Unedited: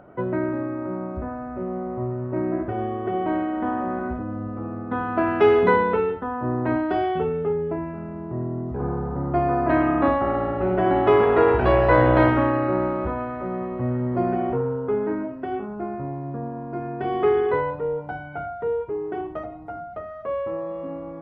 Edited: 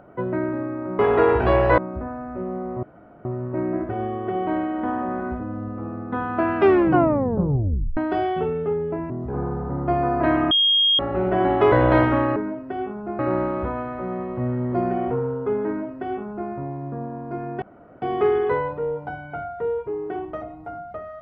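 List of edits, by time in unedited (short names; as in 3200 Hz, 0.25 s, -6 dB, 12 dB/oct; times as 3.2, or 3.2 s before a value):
2.04 insert room tone 0.42 s
5.36 tape stop 1.40 s
7.89–8.56 cut
9.97–10.45 bleep 3250 Hz -14.5 dBFS
11.18–11.97 move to 0.99
15.09–15.92 copy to 12.61
17.04 insert room tone 0.40 s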